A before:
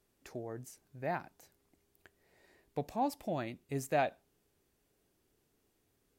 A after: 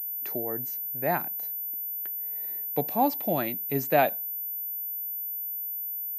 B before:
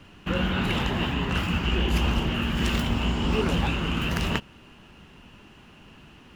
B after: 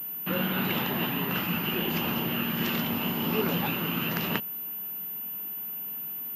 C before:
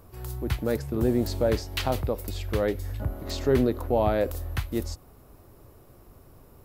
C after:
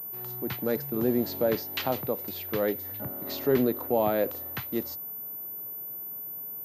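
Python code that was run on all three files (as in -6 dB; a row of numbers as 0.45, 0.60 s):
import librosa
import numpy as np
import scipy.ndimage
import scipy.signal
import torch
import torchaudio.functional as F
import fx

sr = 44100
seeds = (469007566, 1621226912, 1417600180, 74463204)

y = scipy.signal.sosfilt(scipy.signal.butter(4, 140.0, 'highpass', fs=sr, output='sos'), x)
y = fx.pwm(y, sr, carrier_hz=14000.0)
y = y * 10.0 ** (-30 / 20.0) / np.sqrt(np.mean(np.square(y)))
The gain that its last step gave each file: +9.0, -2.0, -1.0 dB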